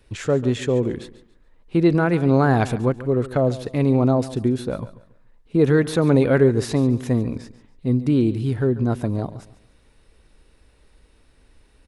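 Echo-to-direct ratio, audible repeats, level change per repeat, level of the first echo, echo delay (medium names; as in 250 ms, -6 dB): -15.5 dB, 2, -10.5 dB, -16.0 dB, 141 ms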